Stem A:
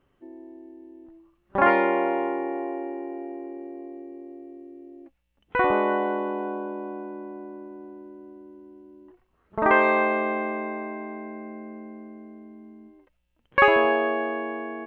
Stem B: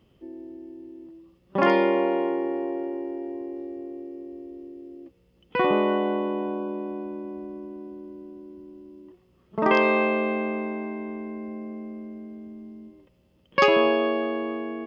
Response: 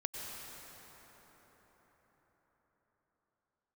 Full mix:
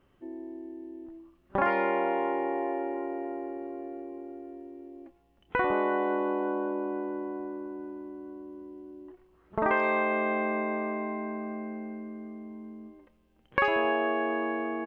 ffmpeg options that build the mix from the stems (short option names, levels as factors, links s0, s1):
-filter_complex "[0:a]volume=1.12,asplit=2[s0][s1];[s1]volume=0.0841[s2];[1:a]adelay=27,volume=0.2[s3];[2:a]atrim=start_sample=2205[s4];[s2][s4]afir=irnorm=-1:irlink=0[s5];[s0][s3][s5]amix=inputs=3:normalize=0,acompressor=threshold=0.0501:ratio=2.5"